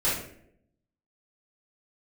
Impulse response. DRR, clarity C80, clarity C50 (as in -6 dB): -11.5 dB, 7.5 dB, 2.0 dB